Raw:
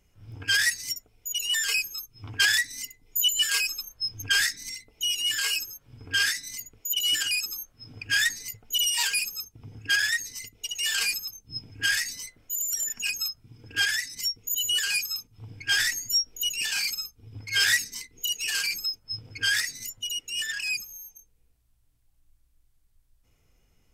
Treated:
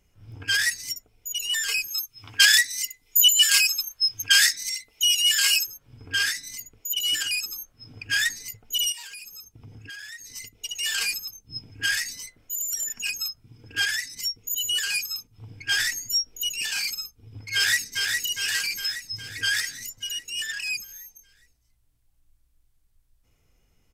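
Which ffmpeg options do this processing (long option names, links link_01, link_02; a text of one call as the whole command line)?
ffmpeg -i in.wav -filter_complex "[0:a]asettb=1/sr,asplit=3[link_01][link_02][link_03];[link_01]atrim=end=1.884[link_04];[link_02]atrim=start=1.88:end=5.67,asetpts=PTS-STARTPTS,afade=type=in:duration=0.004:curve=qsin,afade=type=out:start_time=3.786:duration=0.004:curve=qsin,tiltshelf=frequency=970:gain=-8[link_05];[link_03]atrim=start=5.666[link_06];[link_04][link_05]acrossfade=duration=0.004:curve1=hsin:curve2=qsin[link_07];[link_07][link_06]acrossfade=duration=0.004:curve1=qsin:curve2=hsin,asettb=1/sr,asplit=3[link_08][link_09][link_10];[link_08]atrim=end=8.924[link_11];[link_09]atrim=start=8.92:end=10.3,asetpts=PTS-STARTPTS,afade=type=in:duration=0.004:curve=qsin,afade=type=out:start_time=1.376:duration=0.004:curve=qsin,acompressor=threshold=-40dB:ratio=4:attack=3.2:release=140:knee=1:detection=peak[link_12];[link_10]atrim=start=10.296[link_13];[link_11][link_12]acrossfade=duration=0.004:curve1=hsin:curve2=qsin[link_14];[link_14][link_13]acrossfade=duration=0.004:curve1=qsin:curve2=hsin,asplit=2[link_15][link_16];[link_16]afade=type=in:start_time=17.54:duration=0.01,afade=type=out:start_time=18.16:duration=0.01,aecho=0:1:410|820|1230|1640|2050|2460|2870|3280|3690:0.630957|0.378574|0.227145|0.136287|0.0817721|0.0490632|0.0294379|0.0176628|0.0105977[link_17];[link_15][link_17]amix=inputs=2:normalize=0" out.wav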